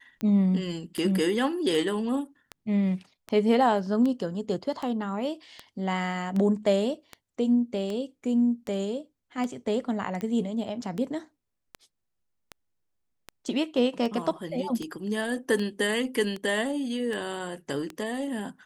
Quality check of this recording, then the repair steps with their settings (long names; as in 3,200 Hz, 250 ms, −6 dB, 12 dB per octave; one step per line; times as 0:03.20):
scratch tick 78 rpm −20 dBFS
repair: click removal